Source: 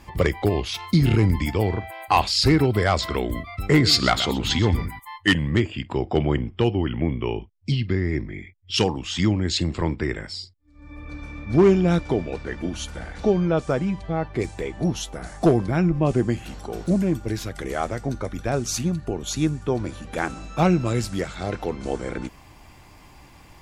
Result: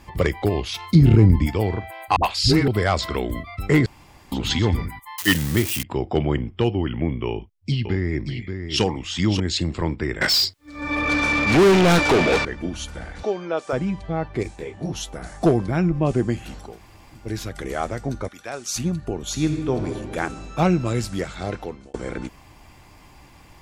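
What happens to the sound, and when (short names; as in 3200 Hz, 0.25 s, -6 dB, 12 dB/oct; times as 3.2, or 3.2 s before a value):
0.95–1.47 tilt shelf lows +6 dB, about 790 Hz
2.16–2.68 dispersion highs, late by 75 ms, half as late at 430 Hz
3.86–4.32 room tone
5.18–5.83 switching spikes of -15.5 dBFS
7.27–9.4 echo 0.58 s -7.5 dB
10.21–12.45 overdrive pedal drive 32 dB, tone 7300 Hz, clips at -9 dBFS
13.23–13.73 HPF 450 Hz
14.43–14.93 detuned doubles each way 52 cents
16.69–17.24 room tone, crossfade 0.24 s
18.28–18.76 HPF 1200 Hz 6 dB/oct
19.28–19.89 reverb throw, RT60 1.7 s, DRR 5 dB
21.49–21.94 fade out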